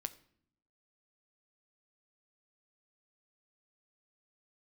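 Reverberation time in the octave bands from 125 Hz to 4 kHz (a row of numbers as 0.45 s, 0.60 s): 1.0 s, 1.0 s, 0.70 s, 0.55 s, 0.55 s, 0.50 s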